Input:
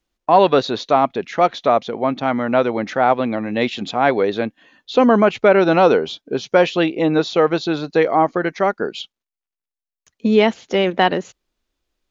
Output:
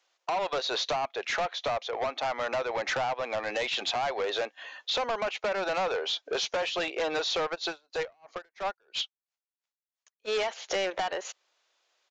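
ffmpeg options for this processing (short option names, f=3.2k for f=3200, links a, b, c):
-filter_complex "[0:a]highpass=f=560:w=0.5412,highpass=f=560:w=1.3066,acompressor=threshold=-28dB:ratio=16,asoftclip=type=tanh:threshold=-34dB,aresample=16000,aresample=44100,asplit=3[a][b][c];[a]afade=t=out:st=7.54:d=0.02[d];[b]aeval=exprs='val(0)*pow(10,-39*(0.5-0.5*cos(2*PI*3*n/s))/20)':c=same,afade=t=in:st=7.54:d=0.02,afade=t=out:st=10.27:d=0.02[e];[c]afade=t=in:st=10.27:d=0.02[f];[d][e][f]amix=inputs=3:normalize=0,volume=8.5dB"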